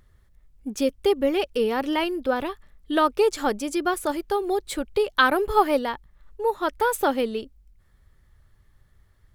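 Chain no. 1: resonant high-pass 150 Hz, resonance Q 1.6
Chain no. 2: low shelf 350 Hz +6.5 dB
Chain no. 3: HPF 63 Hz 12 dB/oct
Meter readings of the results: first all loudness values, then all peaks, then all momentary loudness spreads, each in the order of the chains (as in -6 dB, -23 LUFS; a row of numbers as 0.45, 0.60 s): -23.5, -22.0, -24.0 LUFS; -4.0, -4.5, -4.0 dBFS; 8, 8, 9 LU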